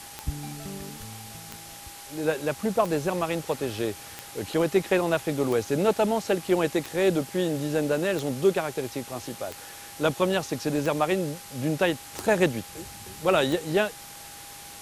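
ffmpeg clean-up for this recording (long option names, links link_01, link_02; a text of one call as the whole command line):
ffmpeg -i in.wav -af "adeclick=threshold=4,bandreject=frequency=810:width=30,afwtdn=0.0079" out.wav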